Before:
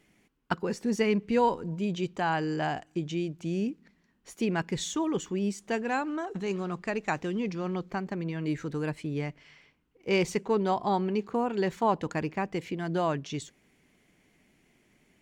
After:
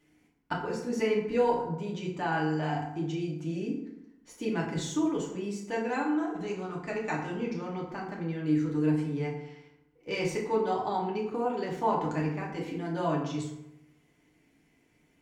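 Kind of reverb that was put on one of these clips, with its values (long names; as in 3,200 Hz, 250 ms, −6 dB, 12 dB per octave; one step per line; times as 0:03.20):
feedback delay network reverb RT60 0.87 s, low-frequency decay 1.1×, high-frequency decay 0.55×, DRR −4 dB
level −7.5 dB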